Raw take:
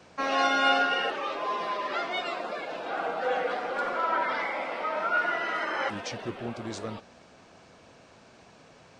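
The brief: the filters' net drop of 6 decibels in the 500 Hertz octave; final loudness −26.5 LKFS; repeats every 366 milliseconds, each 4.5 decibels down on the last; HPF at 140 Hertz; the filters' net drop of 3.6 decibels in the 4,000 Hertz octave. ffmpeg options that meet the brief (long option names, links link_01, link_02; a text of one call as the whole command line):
ffmpeg -i in.wav -af "highpass=140,equalizer=frequency=500:width_type=o:gain=-7.5,equalizer=frequency=4000:width_type=o:gain=-5.5,aecho=1:1:366|732|1098|1464|1830|2196|2562|2928|3294:0.596|0.357|0.214|0.129|0.0772|0.0463|0.0278|0.0167|0.01,volume=2.5dB" out.wav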